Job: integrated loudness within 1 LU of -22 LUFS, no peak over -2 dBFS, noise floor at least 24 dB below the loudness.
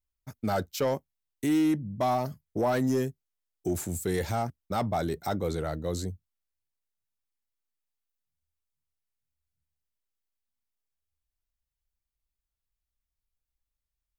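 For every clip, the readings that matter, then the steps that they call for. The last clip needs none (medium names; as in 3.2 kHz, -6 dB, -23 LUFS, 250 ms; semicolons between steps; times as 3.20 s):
clipped samples 0.4%; clipping level -20.0 dBFS; loudness -30.0 LUFS; peak level -20.0 dBFS; loudness target -22.0 LUFS
-> clip repair -20 dBFS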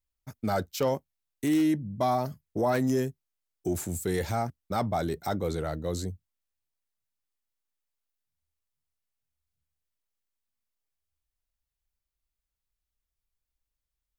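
clipped samples 0.0%; loudness -30.0 LUFS; peak level -13.5 dBFS; loudness target -22.0 LUFS
-> trim +8 dB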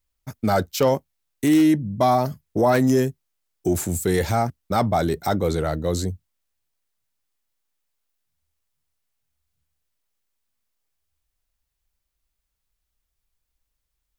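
loudness -22.0 LUFS; peak level -5.5 dBFS; noise floor -79 dBFS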